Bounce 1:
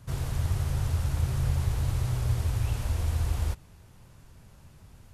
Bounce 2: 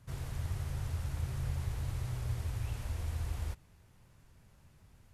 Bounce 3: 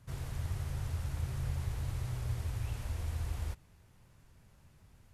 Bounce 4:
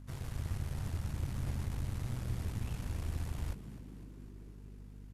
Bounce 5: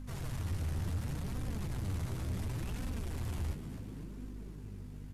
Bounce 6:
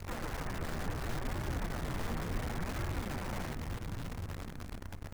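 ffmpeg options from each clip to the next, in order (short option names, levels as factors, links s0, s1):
-af "equalizer=f=2000:t=o:w=0.72:g=3,volume=0.355"
-af anull
-filter_complex "[0:a]aeval=exprs='val(0)+0.00447*(sin(2*PI*50*n/s)+sin(2*PI*2*50*n/s)/2+sin(2*PI*3*50*n/s)/3+sin(2*PI*4*50*n/s)/4+sin(2*PI*5*50*n/s)/5)':c=same,aeval=exprs='0.0708*(cos(1*acos(clip(val(0)/0.0708,-1,1)))-cos(1*PI/2))+0.00708*(cos(6*acos(clip(val(0)/0.0708,-1,1)))-cos(6*PI/2))':c=same,asplit=7[s0][s1][s2][s3][s4][s5][s6];[s1]adelay=252,afreqshift=63,volume=0.178[s7];[s2]adelay=504,afreqshift=126,volume=0.108[s8];[s3]adelay=756,afreqshift=189,volume=0.0661[s9];[s4]adelay=1008,afreqshift=252,volume=0.0403[s10];[s5]adelay=1260,afreqshift=315,volume=0.0245[s11];[s6]adelay=1512,afreqshift=378,volume=0.015[s12];[s0][s7][s8][s9][s10][s11][s12]amix=inputs=7:normalize=0,volume=0.794"
-af "asoftclip=type=tanh:threshold=0.0119,flanger=delay=3.8:depth=8.9:regen=40:speed=0.7:shape=sinusoidal,volume=3.35"
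-filter_complex "[0:a]asplit=2[s0][s1];[s1]acrusher=bits=3:mode=log:mix=0:aa=0.000001,volume=0.355[s2];[s0][s2]amix=inputs=2:normalize=0,highpass=f=170:t=q:w=0.5412,highpass=f=170:t=q:w=1.307,lowpass=f=2300:t=q:w=0.5176,lowpass=f=2300:t=q:w=0.7071,lowpass=f=2300:t=q:w=1.932,afreqshift=-160,acrusher=bits=9:dc=4:mix=0:aa=0.000001,volume=2.11"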